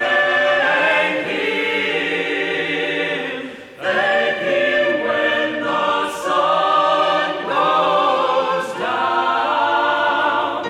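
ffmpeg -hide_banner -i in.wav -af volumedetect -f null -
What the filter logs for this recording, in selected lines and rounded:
mean_volume: -18.0 dB
max_volume: -5.2 dB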